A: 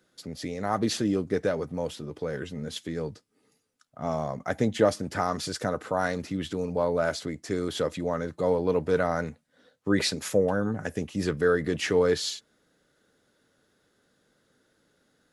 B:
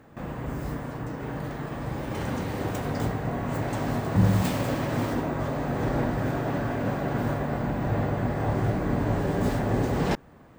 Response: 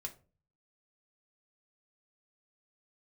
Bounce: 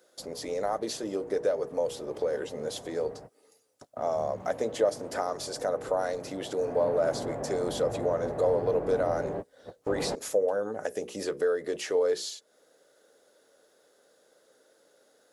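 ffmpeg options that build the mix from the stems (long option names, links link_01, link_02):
-filter_complex "[0:a]bass=frequency=250:gain=-14,treble=frequency=4000:gain=9,bandreject=frequency=60:width_type=h:width=6,bandreject=frequency=120:width_type=h:width=6,bandreject=frequency=180:width_type=h:width=6,bandreject=frequency=240:width_type=h:width=6,bandreject=frequency=300:width_type=h:width=6,bandreject=frequency=360:width_type=h:width=6,bandreject=frequency=420:width_type=h:width=6,bandreject=frequency=480:width_type=h:width=6,acompressor=threshold=-38dB:ratio=2.5,volume=-1.5dB,asplit=2[link_01][link_02];[1:a]lowpass=frequency=2300:poles=1,asoftclip=type=tanh:threshold=-22dB,volume=-12.5dB,afade=type=in:start_time=6.56:duration=0.26:silence=0.354813[link_03];[link_02]apad=whole_len=466829[link_04];[link_03][link_04]sidechaingate=range=-42dB:threshold=-58dB:ratio=16:detection=peak[link_05];[link_01][link_05]amix=inputs=2:normalize=0,equalizer=frequency=540:width=0.93:gain=13.5"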